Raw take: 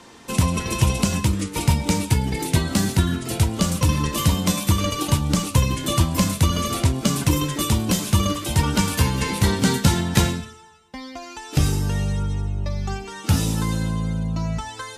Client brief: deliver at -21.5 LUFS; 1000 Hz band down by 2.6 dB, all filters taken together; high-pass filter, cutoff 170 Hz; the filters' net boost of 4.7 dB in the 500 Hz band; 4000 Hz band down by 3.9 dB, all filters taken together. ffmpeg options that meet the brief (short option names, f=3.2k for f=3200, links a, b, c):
-af "highpass=170,equalizer=f=500:t=o:g=7,equalizer=f=1k:t=o:g=-4.5,equalizer=f=4k:t=o:g=-5,volume=3dB"